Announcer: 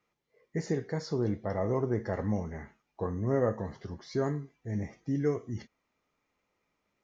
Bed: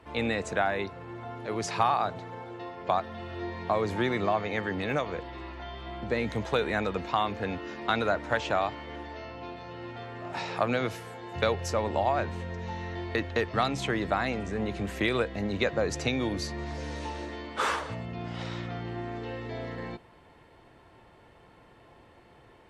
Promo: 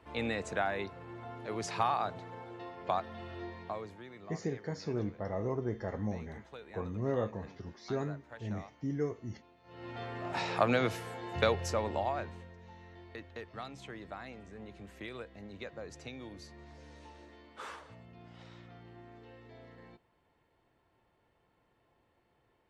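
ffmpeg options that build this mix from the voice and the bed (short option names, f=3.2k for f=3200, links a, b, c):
-filter_complex "[0:a]adelay=3750,volume=-5dB[a];[1:a]volume=16dB,afade=t=out:st=3.28:d=0.7:silence=0.149624,afade=t=in:st=9.63:d=0.4:silence=0.0841395,afade=t=out:st=11.26:d=1.28:silence=0.149624[b];[a][b]amix=inputs=2:normalize=0"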